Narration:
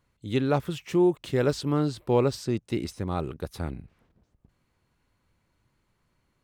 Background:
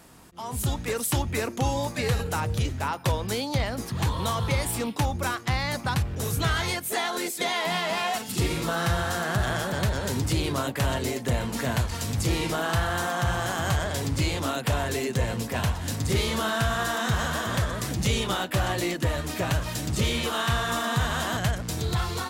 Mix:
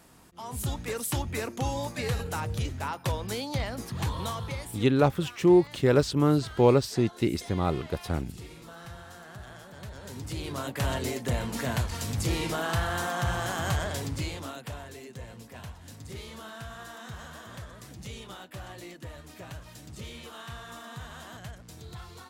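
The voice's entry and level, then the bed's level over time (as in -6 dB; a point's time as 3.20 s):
4.50 s, +2.5 dB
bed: 4.20 s -4.5 dB
5.09 s -19 dB
9.71 s -19 dB
10.86 s -3 dB
13.88 s -3 dB
14.94 s -16.5 dB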